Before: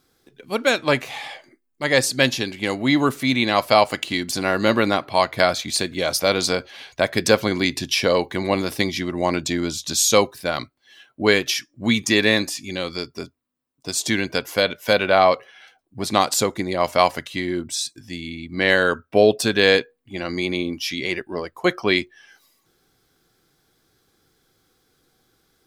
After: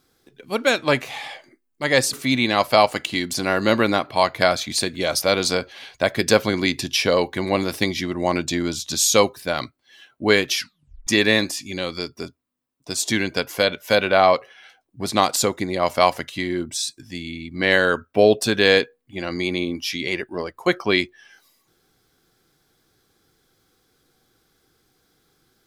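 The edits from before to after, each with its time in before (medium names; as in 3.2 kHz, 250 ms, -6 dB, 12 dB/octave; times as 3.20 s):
2.13–3.11 s: delete
11.55 s: tape stop 0.50 s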